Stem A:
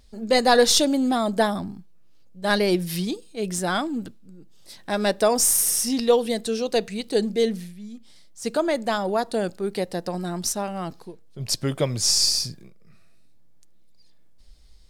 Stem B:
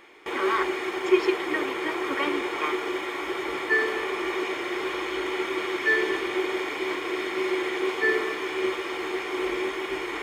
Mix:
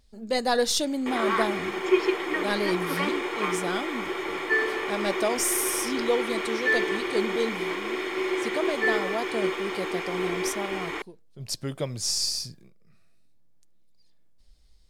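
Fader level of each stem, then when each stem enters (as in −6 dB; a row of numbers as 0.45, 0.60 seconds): −7.0, −1.0 decibels; 0.00, 0.80 seconds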